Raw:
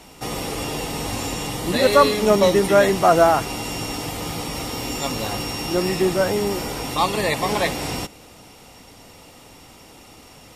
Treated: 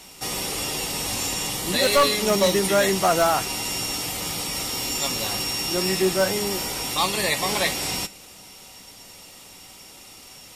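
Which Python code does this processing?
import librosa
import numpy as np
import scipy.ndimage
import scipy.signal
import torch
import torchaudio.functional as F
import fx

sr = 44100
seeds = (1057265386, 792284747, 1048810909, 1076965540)

y = fx.high_shelf(x, sr, hz=2100.0, db=11.5)
y = fx.comb_fb(y, sr, f0_hz=190.0, decay_s=0.18, harmonics='all', damping=0.0, mix_pct=60)
y = np.clip(y, -10.0 ** (-12.5 / 20.0), 10.0 ** (-12.5 / 20.0))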